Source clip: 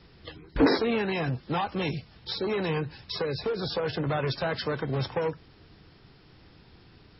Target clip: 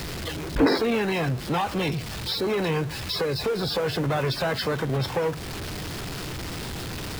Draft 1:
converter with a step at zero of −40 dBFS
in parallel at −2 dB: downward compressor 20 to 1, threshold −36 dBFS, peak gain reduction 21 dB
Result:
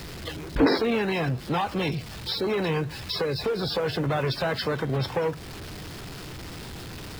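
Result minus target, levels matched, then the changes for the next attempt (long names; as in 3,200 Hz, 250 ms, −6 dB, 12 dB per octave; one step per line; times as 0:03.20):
converter with a step at zero: distortion −6 dB
change: converter with a step at zero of −33 dBFS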